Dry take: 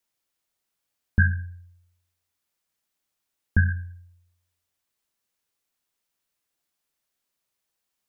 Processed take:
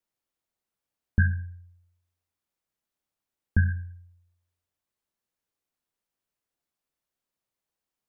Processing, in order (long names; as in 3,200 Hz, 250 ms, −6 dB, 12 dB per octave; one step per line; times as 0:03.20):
tilt shelving filter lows +4 dB, about 1,400 Hz
level −5.5 dB